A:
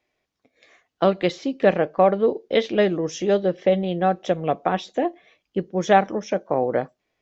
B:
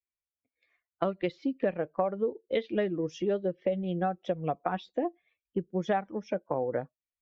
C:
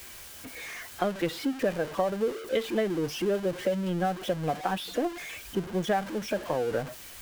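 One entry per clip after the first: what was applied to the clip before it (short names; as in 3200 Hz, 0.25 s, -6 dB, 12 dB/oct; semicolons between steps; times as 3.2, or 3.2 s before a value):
per-bin expansion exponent 1.5; LPF 2800 Hz 12 dB/oct; compressor 5:1, threshold -26 dBFS, peak gain reduction 13 dB
zero-crossing step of -34 dBFS; small resonant body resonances 1600/3000 Hz, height 8 dB; record warp 33 1/3 rpm, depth 100 cents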